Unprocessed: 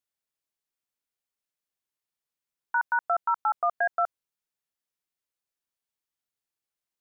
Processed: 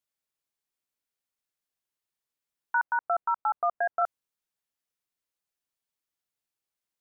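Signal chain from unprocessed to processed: 2.82–4.02 LPF 1400 Hz 12 dB/oct

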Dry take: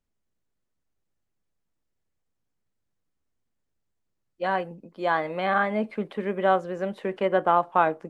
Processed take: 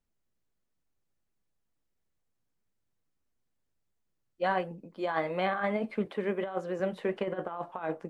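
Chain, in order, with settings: 6.05–6.8 HPF 170 Hz; negative-ratio compressor -25 dBFS, ratio -0.5; flange 1.5 Hz, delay 4.1 ms, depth 4.7 ms, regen -68%

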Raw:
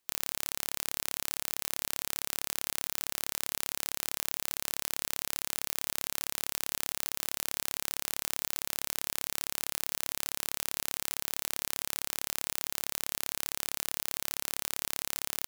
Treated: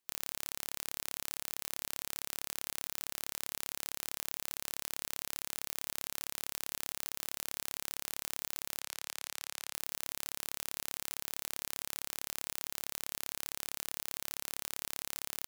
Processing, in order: 8.8–9.74 weighting filter A; gain -5.5 dB

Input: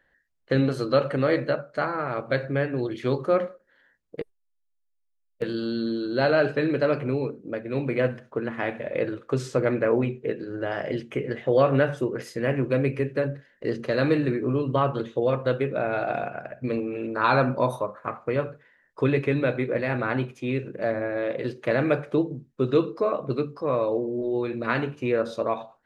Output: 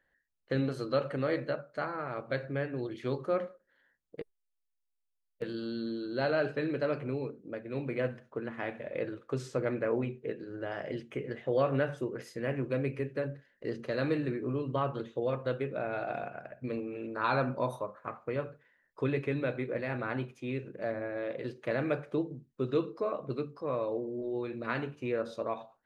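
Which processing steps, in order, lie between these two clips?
gain -8.5 dB

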